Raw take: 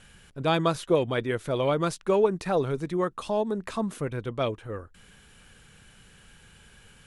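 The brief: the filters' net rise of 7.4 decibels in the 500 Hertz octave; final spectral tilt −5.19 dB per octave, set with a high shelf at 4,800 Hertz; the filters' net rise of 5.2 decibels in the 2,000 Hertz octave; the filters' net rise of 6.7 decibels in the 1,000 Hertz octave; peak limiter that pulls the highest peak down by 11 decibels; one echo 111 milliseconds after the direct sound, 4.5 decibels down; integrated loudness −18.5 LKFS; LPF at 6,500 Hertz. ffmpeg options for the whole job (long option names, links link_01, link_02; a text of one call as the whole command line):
ffmpeg -i in.wav -af "lowpass=6500,equalizer=frequency=500:width_type=o:gain=7.5,equalizer=frequency=1000:width_type=o:gain=5,equalizer=frequency=2000:width_type=o:gain=4,highshelf=frequency=4800:gain=4,alimiter=limit=-14dB:level=0:latency=1,aecho=1:1:111:0.596,volume=5.5dB" out.wav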